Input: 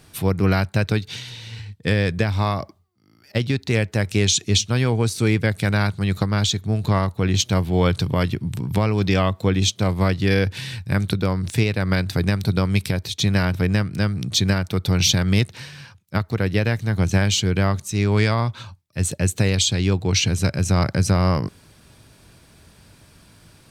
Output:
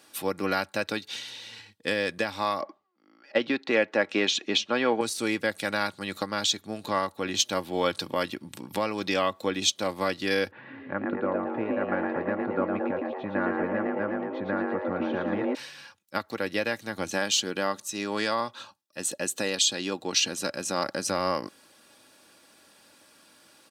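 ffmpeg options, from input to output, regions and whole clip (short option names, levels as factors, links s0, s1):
-filter_complex "[0:a]asettb=1/sr,asplit=3[s0][s1][s2];[s0]atrim=end=2.614[s3];[s1]atrim=start=2.61:end=5.01,asetpts=PTS-STARTPTS,afade=t=in:d=0.004:c=qsin,afade=t=out:st=2.396:d=0.004:c=qsin,highpass=220,lowpass=2500,acontrast=52[s4];[s2]atrim=start=5.006[s5];[s3][s4]acrossfade=d=0.004:c1=hsin:c2=qsin[s6];[s6][s5]acrossfade=d=0.004:c1=qsin:c2=hsin,asettb=1/sr,asplit=3[s7][s8][s9];[s7]atrim=end=10.514[s10];[s8]atrim=start=10.51:end=15.55,asetpts=PTS-STARTPTS,afade=t=in:d=0.004:c=qsin,afade=t=out:st=5.036:d=0.004:c=qsin,lowpass=f=1600:w=0.5412,lowpass=f=1600:w=1.3066,asplit=8[s11][s12][s13][s14][s15][s16][s17][s18];[s12]adelay=112,afreqshift=140,volume=0.562[s19];[s13]adelay=224,afreqshift=280,volume=0.292[s20];[s14]adelay=336,afreqshift=420,volume=0.151[s21];[s15]adelay=448,afreqshift=560,volume=0.0794[s22];[s16]adelay=560,afreqshift=700,volume=0.0412[s23];[s17]adelay=672,afreqshift=840,volume=0.0214[s24];[s18]adelay=784,afreqshift=980,volume=0.0111[s25];[s11][s19][s20][s21][s22][s23][s24][s25]amix=inputs=8:normalize=0,atrim=end_sample=222264[s26];[s9]atrim=start=15.546[s27];[s10][s26]acrossfade=d=0.004:c1=hsin:c2=qsin[s28];[s28][s27]acrossfade=d=0.004:c1=qsin:c2=hsin,asettb=1/sr,asplit=3[s29][s30][s31];[s29]atrim=end=17.134[s32];[s30]atrim=start=17.13:end=21.08,asetpts=PTS-STARTPTS,afade=t=in:d=0.004:c=qsin,afade=t=out:st=3.946:d=0.004:c=qsin,equalizer=f=92:t=o:w=0.36:g=-11.5,bandreject=f=2200:w=8[s33];[s31]atrim=start=21.076[s34];[s32][s33]acrossfade=d=0.004:c1=hsin:c2=qsin[s35];[s35][s34]acrossfade=d=0.004:c1=qsin:c2=hsin,highpass=360,bandreject=f=2200:w=24,aecho=1:1:3.6:0.44,volume=0.668"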